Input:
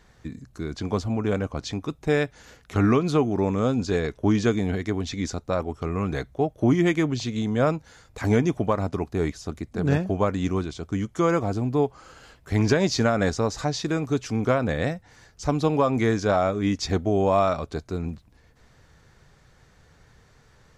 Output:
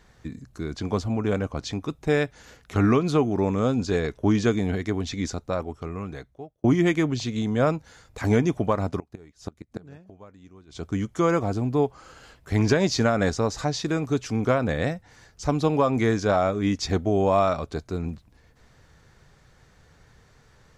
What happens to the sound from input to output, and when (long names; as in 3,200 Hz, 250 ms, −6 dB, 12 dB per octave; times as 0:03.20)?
0:05.27–0:06.64: fade out
0:08.96–0:10.82: gate with flip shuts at −19 dBFS, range −24 dB